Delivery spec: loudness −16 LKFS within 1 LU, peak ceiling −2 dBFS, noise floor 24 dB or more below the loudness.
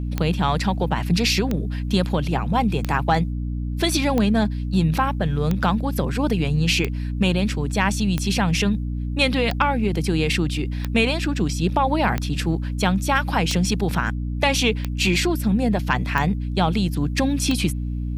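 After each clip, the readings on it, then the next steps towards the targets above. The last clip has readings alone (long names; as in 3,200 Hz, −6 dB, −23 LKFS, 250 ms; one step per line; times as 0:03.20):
number of clicks 14; mains hum 60 Hz; hum harmonics up to 300 Hz; level of the hum −23 dBFS; integrated loudness −21.5 LKFS; sample peak −4.5 dBFS; target loudness −16.0 LKFS
→ click removal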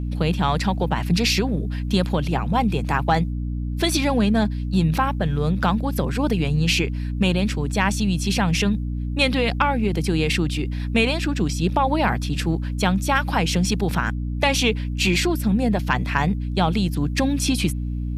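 number of clicks 0; mains hum 60 Hz; hum harmonics up to 300 Hz; level of the hum −23 dBFS
→ hum removal 60 Hz, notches 5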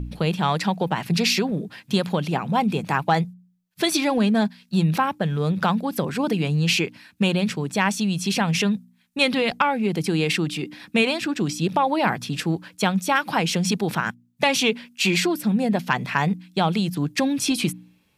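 mains hum none found; integrated loudness −23.0 LKFS; sample peak −5.5 dBFS; target loudness −16.0 LKFS
→ level +7 dB
brickwall limiter −2 dBFS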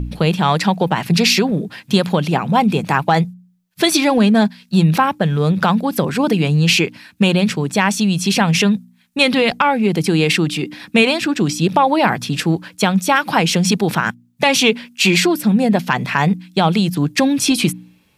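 integrated loudness −16.0 LKFS; sample peak −2.0 dBFS; background noise floor −55 dBFS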